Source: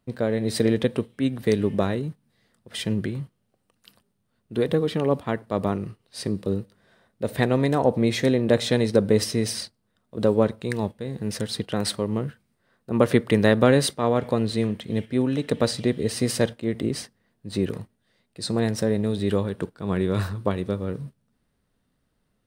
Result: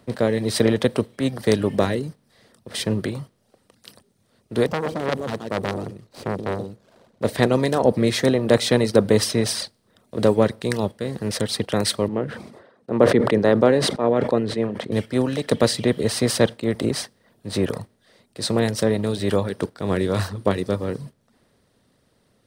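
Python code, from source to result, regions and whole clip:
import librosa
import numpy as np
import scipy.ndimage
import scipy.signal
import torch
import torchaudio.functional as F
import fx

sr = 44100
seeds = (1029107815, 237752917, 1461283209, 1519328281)

y = fx.chain(x, sr, fx.median_filter(points=25),
    fx.echo_single(ms=128, db=-8.5),
    fx.transformer_sat(knee_hz=1700.0), at=(4.67, 7.24))
y = fx.chain(y, sr, fx.bandpass_q(hz=490.0, q=0.57),
    fx.sustainer(db_per_s=67.0), at=(12.08, 14.92))
y = fx.bin_compress(y, sr, power=0.6)
y = fx.dereverb_blind(y, sr, rt60_s=0.69)
y = fx.band_widen(y, sr, depth_pct=40)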